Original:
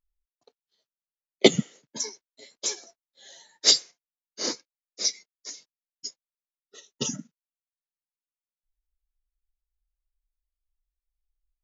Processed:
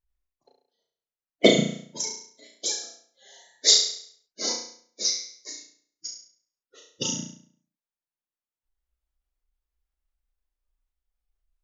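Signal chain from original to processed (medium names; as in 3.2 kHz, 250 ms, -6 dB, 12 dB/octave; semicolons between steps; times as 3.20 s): coarse spectral quantiser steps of 30 dB; flutter echo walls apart 5.9 m, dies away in 0.58 s; tape noise reduction on one side only decoder only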